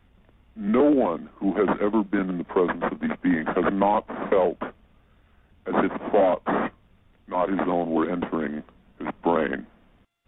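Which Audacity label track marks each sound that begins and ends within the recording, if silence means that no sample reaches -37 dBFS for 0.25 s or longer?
0.570000	4.700000	sound
5.660000	6.700000	sound
7.290000	8.690000	sound
9.000000	9.630000	sound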